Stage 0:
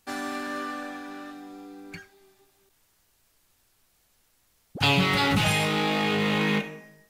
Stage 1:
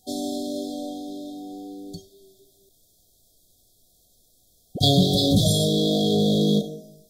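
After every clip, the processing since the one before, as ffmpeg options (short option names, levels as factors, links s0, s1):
-af "afftfilt=real='re*(1-between(b*sr/4096,750,3200))':imag='im*(1-between(b*sr/4096,750,3200))':win_size=4096:overlap=0.75,acontrast=60"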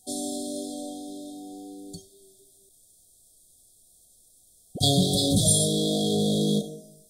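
-af "equalizer=f=9000:t=o:w=0.59:g=15,volume=0.631"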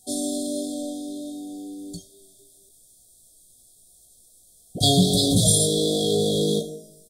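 -filter_complex "[0:a]asplit=2[s0][s1];[s1]adelay=17,volume=0.501[s2];[s0][s2]amix=inputs=2:normalize=0,volume=1.33"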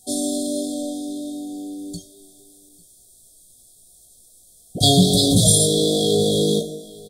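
-af "aecho=1:1:845:0.0668,volume=1.5"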